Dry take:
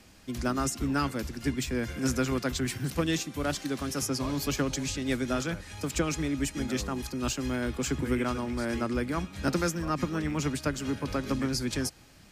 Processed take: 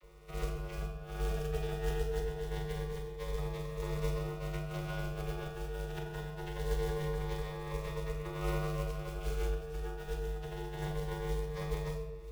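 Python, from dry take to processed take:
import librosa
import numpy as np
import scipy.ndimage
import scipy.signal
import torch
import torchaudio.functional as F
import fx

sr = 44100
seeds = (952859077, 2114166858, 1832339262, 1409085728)

p1 = fx.envelope_flatten(x, sr, power=0.3)
p2 = scipy.signal.sosfilt(scipy.signal.butter(2, 2700.0, 'lowpass', fs=sr, output='sos'), p1)
p3 = fx.peak_eq(p2, sr, hz=170.0, db=9.5, octaves=1.2)
p4 = fx.hum_notches(p3, sr, base_hz=60, count=4)
p5 = fx.over_compress(p4, sr, threshold_db=-34.0, ratio=-0.5)
p6 = p5 + fx.room_flutter(p5, sr, wall_m=7.4, rt60_s=0.32, dry=0)
p7 = fx.vocoder(p6, sr, bands=32, carrier='saw', carrier_hz=201.0)
p8 = fx.quant_float(p7, sr, bits=2)
p9 = p8 * np.sin(2.0 * np.pi * 250.0 * np.arange(len(p8)) / sr)
p10 = fx.room_shoebox(p9, sr, seeds[0], volume_m3=330.0, walls='mixed', distance_m=1.0)
y = fx.notch_cascade(p10, sr, direction='rising', hz=0.24)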